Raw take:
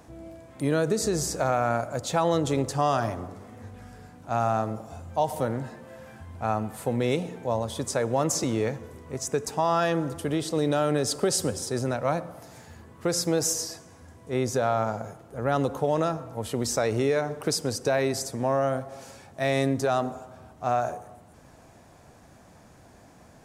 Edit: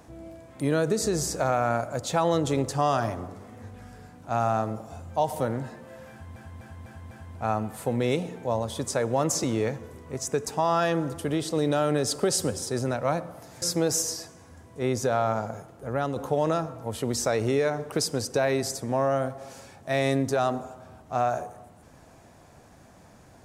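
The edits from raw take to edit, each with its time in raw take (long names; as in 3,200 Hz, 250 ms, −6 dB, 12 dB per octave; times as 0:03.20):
0:06.11–0:06.36: repeat, 5 plays
0:12.62–0:13.13: remove
0:15.37–0:15.67: fade out, to −7 dB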